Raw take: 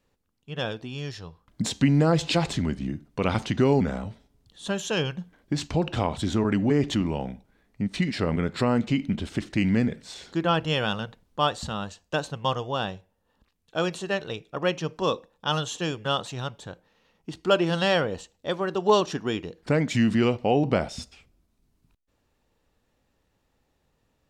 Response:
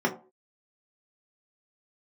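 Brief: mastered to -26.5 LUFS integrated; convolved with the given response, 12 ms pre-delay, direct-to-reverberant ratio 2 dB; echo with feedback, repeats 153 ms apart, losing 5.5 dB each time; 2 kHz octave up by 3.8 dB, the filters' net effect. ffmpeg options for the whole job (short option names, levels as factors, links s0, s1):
-filter_complex "[0:a]equalizer=f=2000:t=o:g=5,aecho=1:1:153|306|459|612|765|918|1071:0.531|0.281|0.149|0.079|0.0419|0.0222|0.0118,asplit=2[s0][s1];[1:a]atrim=start_sample=2205,adelay=12[s2];[s1][s2]afir=irnorm=-1:irlink=0,volume=0.188[s3];[s0][s3]amix=inputs=2:normalize=0,volume=0.531"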